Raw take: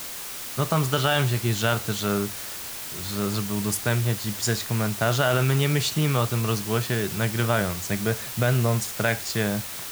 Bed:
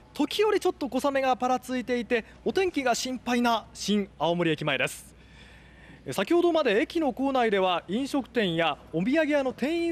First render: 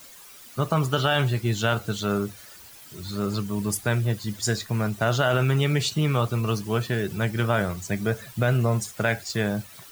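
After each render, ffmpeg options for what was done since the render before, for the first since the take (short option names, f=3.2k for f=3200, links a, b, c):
-af "afftdn=nr=14:nf=-35"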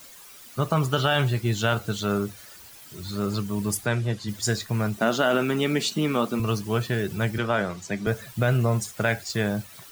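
-filter_complex "[0:a]asplit=3[a][b][c];[a]afade=t=out:st=3.85:d=0.02[d];[b]highpass=110,lowpass=7.9k,afade=t=in:st=3.85:d=0.02,afade=t=out:st=4.27:d=0.02[e];[c]afade=t=in:st=4.27:d=0.02[f];[d][e][f]amix=inputs=3:normalize=0,asettb=1/sr,asplit=3[g][h][i];[g]atrim=end=4.974[j];[h]atrim=start=4.97:end=6.4,asetpts=PTS-STARTPTS,afade=t=in:d=0.004:c=qsin,afade=t=out:st=1.426:d=0.004:c=qsin,lowshelf=f=150:t=q:w=3:g=-13.5[k];[i]atrim=start=6.396[l];[j][k]acrossfade=d=0.004:c1=hsin:c2=qsin[m];[m][l]acrossfade=d=0.004:c1=qsin:c2=hsin,asettb=1/sr,asplit=3[n][o][p];[n]atrim=end=7.384[q];[o]atrim=start=7.38:end=8.07,asetpts=PTS-STARTPTS,afade=t=in:d=0.004:c=qsin,afade=t=out:st=0.686:d=0.004:c=qsin,acrossover=split=150 7700:gain=0.224 1 0.2[r][s][t];[r][s][t]amix=inputs=3:normalize=0[u];[p]atrim=start=8.066[v];[q][u]acrossfade=d=0.004:c1=hsin:c2=qsin[w];[w][v]acrossfade=d=0.004:c1=qsin:c2=hsin"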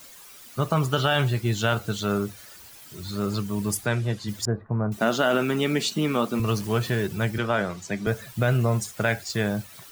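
-filter_complex "[0:a]asettb=1/sr,asplit=3[a][b][c];[a]atrim=end=4.454[d];[b]atrim=start=4.45:end=4.92,asetpts=PTS-STARTPTS,afade=t=in:d=0.004:c=qsin,afade=t=out:st=0.466:d=0.004:c=qsin,lowpass=f=1.2k:w=0.5412,lowpass=f=1.2k:w=1.3066[e];[c]atrim=start=4.916[f];[d][e]acrossfade=d=0.004:c1=hsin:c2=qsin[g];[g][f]acrossfade=d=0.004:c1=qsin:c2=hsin,asettb=1/sr,asplit=3[h][i][j];[h]atrim=end=6.354[k];[i]atrim=start=6.35:end=7.07,asetpts=PTS-STARTPTS,afade=t=in:d=0.004:c=qsin,afade=t=out:st=0.716:d=0.004:c=qsin,aeval=exprs='val(0)+0.5*0.015*sgn(val(0))':c=same[l];[j]atrim=start=7.066[m];[k][l]acrossfade=d=0.004:c1=hsin:c2=qsin[n];[n][m]acrossfade=d=0.004:c1=qsin:c2=hsin"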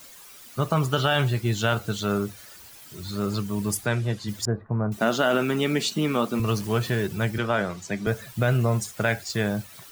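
-af anull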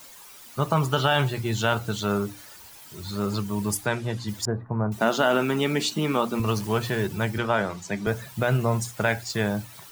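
-af "equalizer=f=910:w=3.9:g=6,bandreject=f=60:t=h:w=6,bandreject=f=120:t=h:w=6,bandreject=f=180:t=h:w=6,bandreject=f=240:t=h:w=6,bandreject=f=300:t=h:w=6"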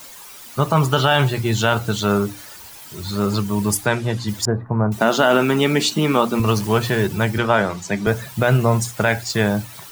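-af "volume=7dB,alimiter=limit=-3dB:level=0:latency=1"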